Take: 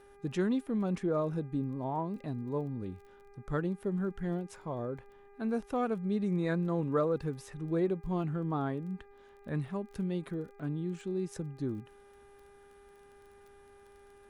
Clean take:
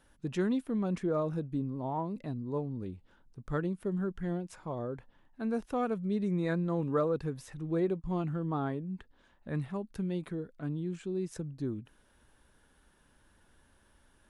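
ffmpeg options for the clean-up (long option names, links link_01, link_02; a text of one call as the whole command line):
ffmpeg -i in.wav -af "adeclick=threshold=4,bandreject=frequency=402.1:width_type=h:width=4,bandreject=frequency=804.2:width_type=h:width=4,bandreject=frequency=1206.3:width_type=h:width=4,bandreject=frequency=1608.4:width_type=h:width=4,bandreject=frequency=2010.5:width_type=h:width=4,bandreject=frequency=2412.6:width_type=h:width=4" out.wav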